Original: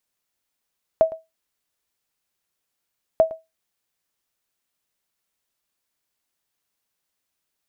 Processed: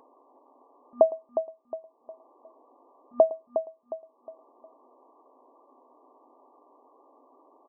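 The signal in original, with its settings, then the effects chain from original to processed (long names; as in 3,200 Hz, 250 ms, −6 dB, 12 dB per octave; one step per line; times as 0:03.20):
ping with an echo 646 Hz, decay 0.20 s, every 2.19 s, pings 2, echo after 0.11 s, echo −19 dB −7 dBFS
brick-wall band-pass 240–1,200 Hz
upward compression, threshold −33 dBFS
repeating echo 360 ms, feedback 38%, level −9 dB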